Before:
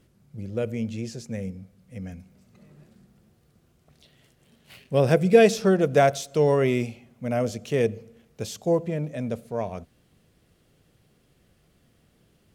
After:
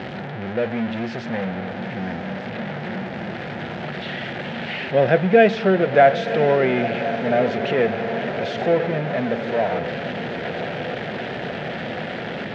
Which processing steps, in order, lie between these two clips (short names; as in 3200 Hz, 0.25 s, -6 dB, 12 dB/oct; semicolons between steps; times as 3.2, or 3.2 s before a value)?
zero-crossing step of -23.5 dBFS; speaker cabinet 220–3000 Hz, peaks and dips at 300 Hz -7 dB, 440 Hz -5 dB, 740 Hz +3 dB, 1100 Hz -10 dB, 1700 Hz +4 dB, 2700 Hz -3 dB; diffused feedback echo 0.977 s, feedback 71%, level -10.5 dB; gain +4.5 dB